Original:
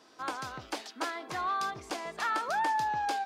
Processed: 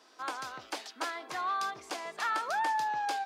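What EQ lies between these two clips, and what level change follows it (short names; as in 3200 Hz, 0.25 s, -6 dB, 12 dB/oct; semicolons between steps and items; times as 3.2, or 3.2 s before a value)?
HPF 480 Hz 6 dB/oct; 0.0 dB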